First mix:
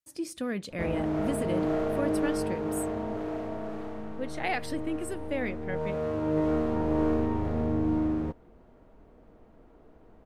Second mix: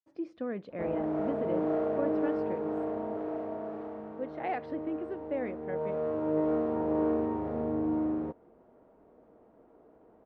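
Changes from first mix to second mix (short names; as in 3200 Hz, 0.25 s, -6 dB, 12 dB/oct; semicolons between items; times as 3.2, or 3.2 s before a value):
speech: add air absorption 200 m; master: add band-pass 550 Hz, Q 0.69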